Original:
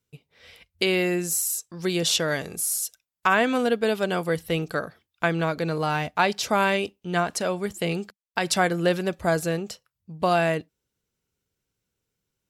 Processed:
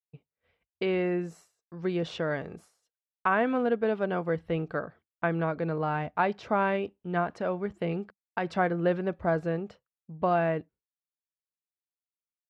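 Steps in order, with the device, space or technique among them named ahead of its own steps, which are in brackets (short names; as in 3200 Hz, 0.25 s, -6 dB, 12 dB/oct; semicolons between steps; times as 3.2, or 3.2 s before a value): hearing-loss simulation (LPF 1600 Hz 12 dB/oct; expander -45 dBFS); gain -3.5 dB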